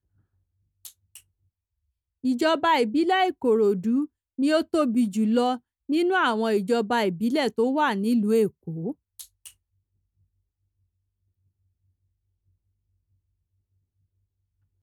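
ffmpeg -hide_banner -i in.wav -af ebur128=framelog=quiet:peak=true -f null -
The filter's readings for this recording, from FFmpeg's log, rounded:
Integrated loudness:
  I:         -23.7 LUFS
  Threshold: -34.6 LUFS
Loudness range:
  LRA:         6.5 LU
  Threshold: -45.2 LUFS
  LRA low:   -29.6 LUFS
  LRA high:  -23.1 LUFS
True peak:
  Peak:      -10.8 dBFS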